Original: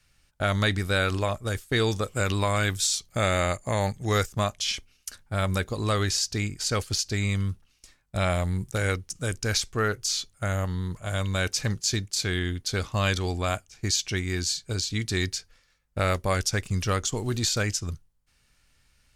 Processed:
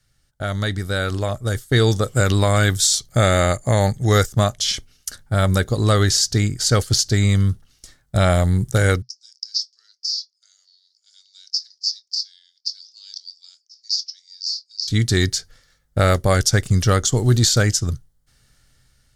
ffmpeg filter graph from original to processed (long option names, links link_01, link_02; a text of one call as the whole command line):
ffmpeg -i in.wav -filter_complex "[0:a]asettb=1/sr,asplit=3[link_01][link_02][link_03];[link_01]atrim=end=9.024[link_04];[link_02]atrim=start=9.02:end=14.88,asetpts=PTS-STARTPTS,afade=type=in:duration=0.004:curve=qsin,afade=type=out:start_time=5.856:duration=0.004:curve=qsin,asuperpass=centerf=5000:order=4:qfactor=5.4,asplit=2[link_05][link_06];[link_06]adelay=25,volume=-14dB[link_07];[link_05][link_07]amix=inputs=2:normalize=0,atrim=end_sample=258426[link_08];[link_03]atrim=start=14.876[link_09];[link_04][link_08]acrossfade=duration=0.004:curve1=hsin:curve2=qsin[link_10];[link_10][link_09]acrossfade=duration=0.004:curve1=qsin:curve2=hsin,equalizer=frequency=125:width_type=o:width=0.33:gain=7,equalizer=frequency=1000:width_type=o:width=0.33:gain=-7,equalizer=frequency=2500:width_type=o:width=0.33:gain=-12,dynaudnorm=framelen=580:gausssize=5:maxgain=10dB" out.wav